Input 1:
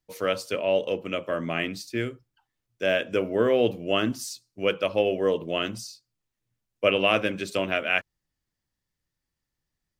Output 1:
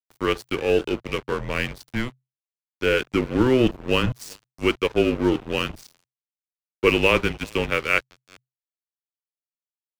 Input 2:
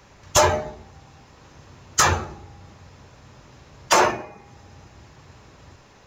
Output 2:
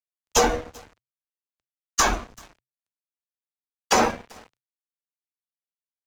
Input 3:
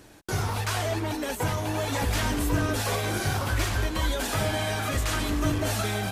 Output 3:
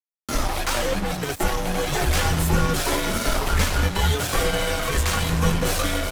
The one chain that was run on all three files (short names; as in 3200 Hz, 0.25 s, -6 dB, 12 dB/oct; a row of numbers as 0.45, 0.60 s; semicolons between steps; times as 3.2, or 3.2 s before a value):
echo 0.387 s -20 dB; crossover distortion -35 dBFS; frequency shift -130 Hz; match loudness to -23 LUFS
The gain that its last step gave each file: +5.0, -1.5, +8.0 dB